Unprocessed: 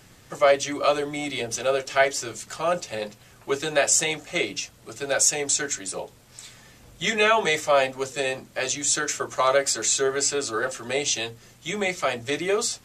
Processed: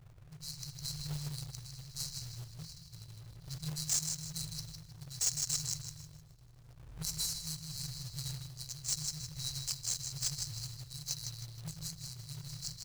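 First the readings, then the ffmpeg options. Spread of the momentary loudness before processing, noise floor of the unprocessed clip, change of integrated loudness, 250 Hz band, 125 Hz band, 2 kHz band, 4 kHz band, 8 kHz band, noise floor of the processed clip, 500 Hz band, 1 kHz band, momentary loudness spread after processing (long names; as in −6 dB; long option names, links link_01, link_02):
14 LU, −53 dBFS, −14.5 dB, −15.5 dB, −0.5 dB, −31.0 dB, −10.5 dB, −11.5 dB, −57 dBFS, below −40 dB, −33.0 dB, 16 LU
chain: -filter_complex "[0:a]asplit=2[link_01][link_02];[link_02]aecho=0:1:46|64|81|332|768:0.335|0.158|0.224|0.106|0.2[link_03];[link_01][link_03]amix=inputs=2:normalize=0,adynamicsmooth=sensitivity=2.5:basefreq=680,afftfilt=real='re*(1-between(b*sr/4096,170,3900))':imag='im*(1-between(b*sr/4096,170,3900))':win_size=4096:overlap=0.75,equalizer=frequency=1700:width=2.7:gain=6,asplit=2[link_04][link_05];[link_05]adelay=157,lowpass=frequency=4100:poles=1,volume=-3dB,asplit=2[link_06][link_07];[link_07]adelay=157,lowpass=frequency=4100:poles=1,volume=0.49,asplit=2[link_08][link_09];[link_09]adelay=157,lowpass=frequency=4100:poles=1,volume=0.49,asplit=2[link_10][link_11];[link_11]adelay=157,lowpass=frequency=4100:poles=1,volume=0.49,asplit=2[link_12][link_13];[link_13]adelay=157,lowpass=frequency=4100:poles=1,volume=0.49,asplit=2[link_14][link_15];[link_15]adelay=157,lowpass=frequency=4100:poles=1,volume=0.49[link_16];[link_06][link_08][link_10][link_12][link_14][link_16]amix=inputs=6:normalize=0[link_17];[link_04][link_17]amix=inputs=2:normalize=0,volume=20dB,asoftclip=hard,volume=-20dB,tremolo=f=0.85:d=0.51,acrusher=bits=2:mode=log:mix=0:aa=0.000001"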